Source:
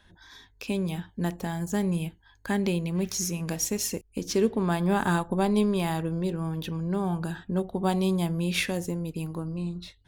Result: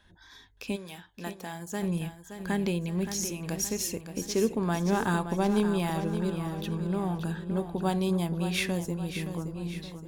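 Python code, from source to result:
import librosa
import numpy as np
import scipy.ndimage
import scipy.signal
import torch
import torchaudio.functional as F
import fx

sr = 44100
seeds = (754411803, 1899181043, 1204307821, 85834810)

p1 = fx.highpass(x, sr, hz=fx.line((0.75, 1100.0), (1.81, 350.0)), slope=6, at=(0.75, 1.81), fade=0.02)
p2 = p1 + fx.echo_feedback(p1, sr, ms=571, feedback_pct=45, wet_db=-9.5, dry=0)
y = p2 * 10.0 ** (-2.5 / 20.0)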